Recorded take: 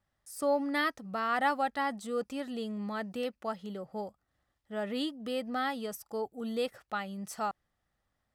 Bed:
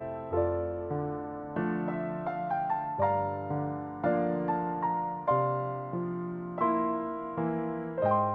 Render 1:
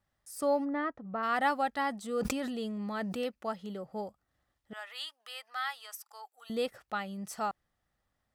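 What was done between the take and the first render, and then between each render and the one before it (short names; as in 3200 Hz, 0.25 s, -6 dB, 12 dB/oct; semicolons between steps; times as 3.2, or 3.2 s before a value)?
0.64–1.22 LPF 1000 Hz -> 1700 Hz; 2.09–3.24 sustainer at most 21 dB/s; 4.73–6.5 HPF 960 Hz 24 dB/oct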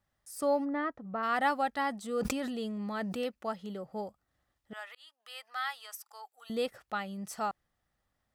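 4.95–5.45 fade in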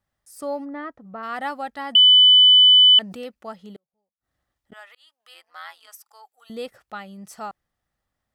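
1.95–2.99 bleep 3000 Hz -8.5 dBFS; 3.76–4.72 flipped gate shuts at -48 dBFS, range -41 dB; 5.34–5.88 AM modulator 170 Hz, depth 75%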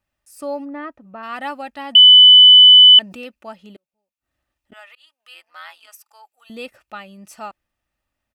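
bell 2600 Hz +11 dB 0.26 oct; comb 3.3 ms, depth 35%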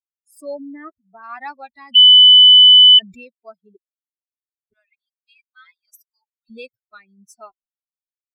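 per-bin expansion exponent 3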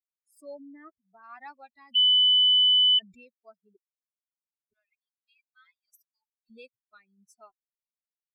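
gain -13 dB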